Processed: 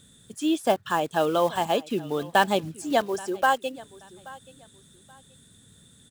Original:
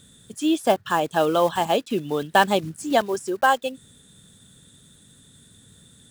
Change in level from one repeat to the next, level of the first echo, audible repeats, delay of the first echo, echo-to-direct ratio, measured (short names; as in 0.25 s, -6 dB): -11.5 dB, -21.0 dB, 2, 0.829 s, -20.5 dB